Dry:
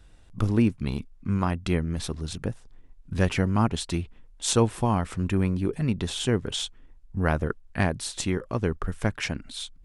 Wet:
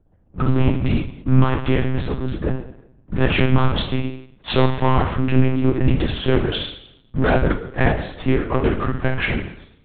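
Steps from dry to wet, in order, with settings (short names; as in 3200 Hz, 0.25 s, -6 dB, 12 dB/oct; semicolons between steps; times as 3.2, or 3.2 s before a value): low-pass opened by the level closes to 640 Hz, open at -18 dBFS; low shelf 70 Hz -9.5 dB; buzz 60 Hz, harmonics 5, -57 dBFS -4 dB/oct; sample leveller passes 3; reverb RT60 0.70 s, pre-delay 5 ms, DRR 1.5 dB; monotone LPC vocoder at 8 kHz 130 Hz; gain -1 dB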